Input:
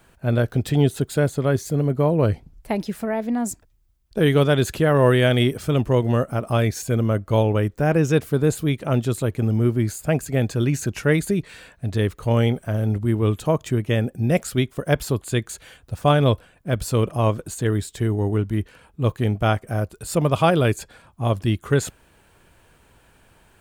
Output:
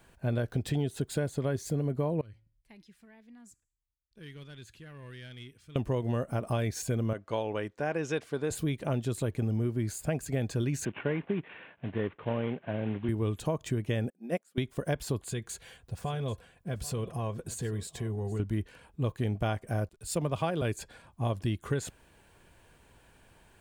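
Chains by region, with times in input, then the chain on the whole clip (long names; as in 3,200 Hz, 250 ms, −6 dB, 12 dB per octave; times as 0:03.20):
0:02.21–0:05.76: mid-hump overdrive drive 10 dB, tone 3,200 Hz, clips at −6.5 dBFS + guitar amp tone stack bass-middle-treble 6-0-2 + tuned comb filter 110 Hz, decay 0.54 s, harmonics odd, mix 40%
0:07.13–0:08.51: high-pass filter 600 Hz 6 dB per octave + high-frequency loss of the air 64 metres
0:10.85–0:13.09: variable-slope delta modulation 16 kbit/s + high-pass filter 170 Hz
0:14.10–0:14.58: linear-phase brick-wall high-pass 170 Hz + parametric band 4,300 Hz −4.5 dB 1.3 octaves + expander for the loud parts 2.5 to 1, over −33 dBFS
0:15.24–0:18.40: downward compressor 3 to 1, threshold −27 dBFS + notch comb filter 300 Hz + single-tap delay 787 ms −18.5 dB
0:19.89–0:20.62: slack as between gear wheels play −45 dBFS + multiband upward and downward expander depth 40%
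whole clip: parametric band 13,000 Hz −5 dB 0.3 octaves; notch filter 1,300 Hz, Q 11; downward compressor, threshold −22 dBFS; level −4.5 dB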